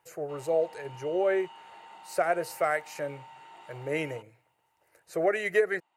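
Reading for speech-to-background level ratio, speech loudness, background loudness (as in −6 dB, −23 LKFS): 19.5 dB, −30.0 LKFS, −49.5 LKFS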